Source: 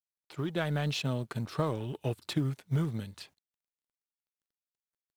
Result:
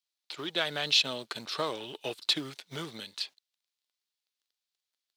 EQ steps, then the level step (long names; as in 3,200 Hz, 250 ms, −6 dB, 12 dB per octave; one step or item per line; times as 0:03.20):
high-pass filter 370 Hz 12 dB per octave
parametric band 4,000 Hz +14.5 dB 1.5 octaves
0.0 dB